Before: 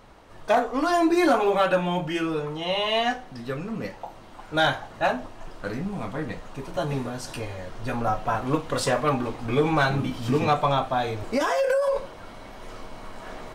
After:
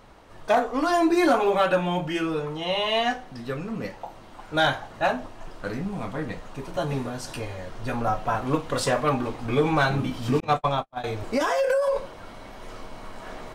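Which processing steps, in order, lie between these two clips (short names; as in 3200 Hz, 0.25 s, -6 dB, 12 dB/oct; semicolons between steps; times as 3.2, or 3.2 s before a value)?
10.4–11.04 gate -21 dBFS, range -49 dB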